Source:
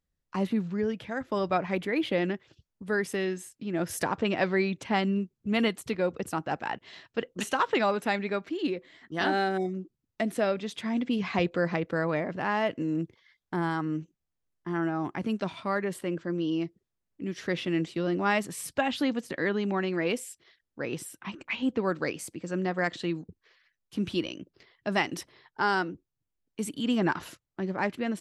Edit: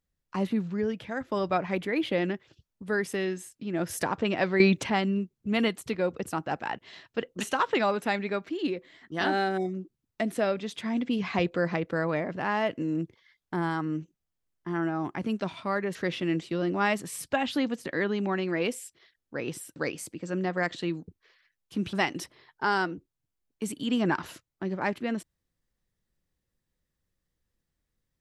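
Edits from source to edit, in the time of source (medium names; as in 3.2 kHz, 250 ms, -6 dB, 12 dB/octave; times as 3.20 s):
4.60–4.90 s: gain +8.5 dB
15.95–17.40 s: delete
21.21–21.97 s: delete
24.14–24.90 s: delete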